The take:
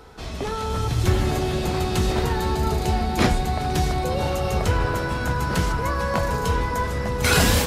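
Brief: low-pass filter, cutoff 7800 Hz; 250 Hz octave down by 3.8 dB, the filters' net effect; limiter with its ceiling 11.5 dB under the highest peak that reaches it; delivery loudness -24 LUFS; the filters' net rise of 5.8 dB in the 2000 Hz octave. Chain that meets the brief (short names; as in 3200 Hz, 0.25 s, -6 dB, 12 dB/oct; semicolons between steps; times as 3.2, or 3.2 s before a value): LPF 7800 Hz; bell 250 Hz -6 dB; bell 2000 Hz +8 dB; gain +0.5 dB; limiter -14 dBFS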